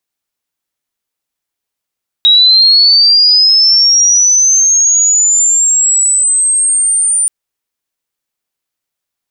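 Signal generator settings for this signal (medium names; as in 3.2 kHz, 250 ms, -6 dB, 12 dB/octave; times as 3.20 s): sweep linear 3.8 kHz -> 9.2 kHz -3 dBFS -> -8.5 dBFS 5.03 s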